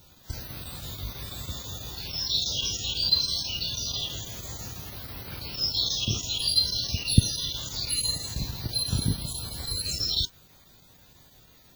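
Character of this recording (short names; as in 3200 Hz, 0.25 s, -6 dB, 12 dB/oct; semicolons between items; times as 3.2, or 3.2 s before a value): chopped level 6.1 Hz, depth 65%, duty 90%; WMA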